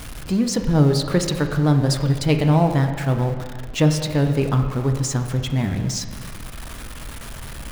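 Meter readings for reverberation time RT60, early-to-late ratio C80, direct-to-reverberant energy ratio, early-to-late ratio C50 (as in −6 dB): 1.8 s, 8.5 dB, 5.0 dB, 7.0 dB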